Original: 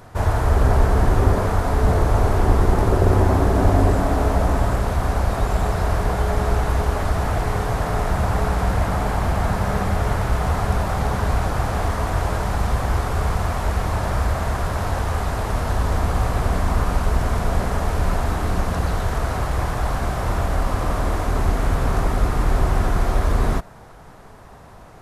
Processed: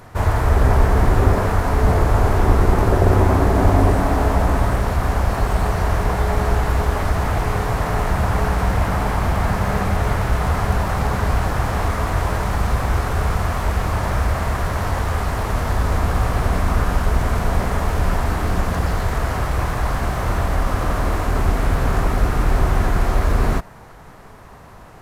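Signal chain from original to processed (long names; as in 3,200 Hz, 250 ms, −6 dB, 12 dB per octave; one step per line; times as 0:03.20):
stylus tracing distortion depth 0.02 ms
formants moved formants +2 semitones
level +1.5 dB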